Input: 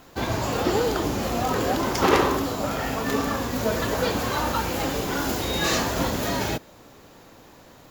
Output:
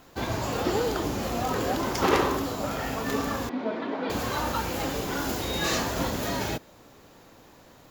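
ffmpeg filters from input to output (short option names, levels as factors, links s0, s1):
-filter_complex "[0:a]asettb=1/sr,asplit=3[s0][s1][s2];[s0]atrim=end=3.494[s3];[s1]atrim=start=3.49:end=4.1,asetpts=PTS-STARTPTS,afade=t=in:d=0.004:c=qsin,afade=t=out:st=0.606:d=0.004:c=qsin,highpass=f=220:w=0.5412,highpass=f=220:w=1.3066,equalizer=f=270:t=q:w=4:g=5,equalizer=f=510:t=q:w=4:g=-6,equalizer=f=1200:t=q:w=4:g=-4,equalizer=f=1700:t=q:w=4:g=-6,equalizer=f=2800:t=q:w=4:g=-7,lowpass=f=3100:w=0.5412,lowpass=f=3100:w=1.3066[s4];[s2]atrim=start=4.096[s5];[s3][s4]acrossfade=d=0.004:c1=hsin:c2=qsin[s6];[s6][s5]acrossfade=d=0.004:c1=qsin:c2=hsin,volume=0.668"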